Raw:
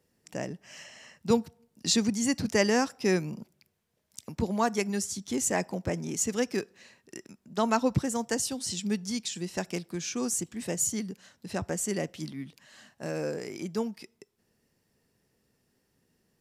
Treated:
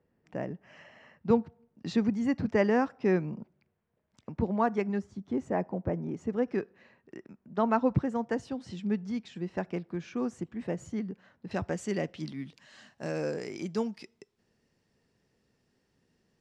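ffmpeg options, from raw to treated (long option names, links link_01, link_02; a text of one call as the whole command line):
ffmpeg -i in.wav -af "asetnsamples=nb_out_samples=441:pad=0,asendcmd='4.99 lowpass f 1100;6.48 lowpass f 1700;11.51 lowpass f 3600;12.27 lowpass f 5900',lowpass=1700" out.wav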